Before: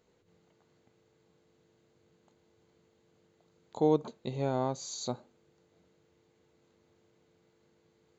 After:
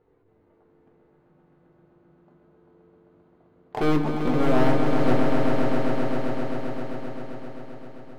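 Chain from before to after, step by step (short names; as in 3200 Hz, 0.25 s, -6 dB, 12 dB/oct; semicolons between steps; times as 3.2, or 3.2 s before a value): LPF 1300 Hz 12 dB/oct; sample leveller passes 2; in parallel at +3 dB: compressor, threshold -31 dBFS, peak gain reduction 12 dB; on the sum: flange 0.28 Hz, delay 2.3 ms, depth 3.9 ms, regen -37%; hard clip -27.5 dBFS, distortion -7 dB; swelling echo 0.131 s, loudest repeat 5, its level -7 dB; shoebox room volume 48 m³, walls mixed, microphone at 0.39 m; gain +5.5 dB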